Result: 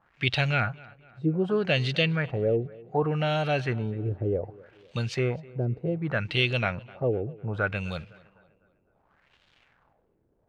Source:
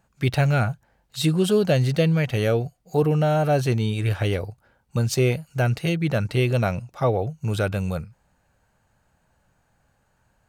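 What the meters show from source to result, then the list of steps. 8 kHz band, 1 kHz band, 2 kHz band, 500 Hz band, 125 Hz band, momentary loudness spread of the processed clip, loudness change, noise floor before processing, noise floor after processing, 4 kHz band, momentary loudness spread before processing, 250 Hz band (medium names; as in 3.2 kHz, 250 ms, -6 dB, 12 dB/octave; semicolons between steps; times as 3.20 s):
under -15 dB, -4.5 dB, +1.0 dB, -5.0 dB, -7.0 dB, 8 LU, -5.0 dB, -67 dBFS, -69 dBFS, +0.5 dB, 8 LU, -6.0 dB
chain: treble shelf 2.1 kHz +11.5 dB; crackle 500 per s -42 dBFS; LFO low-pass sine 0.66 Hz 360–3400 Hz; tape echo 253 ms, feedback 52%, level -21 dB, low-pass 2.6 kHz; trim -7.5 dB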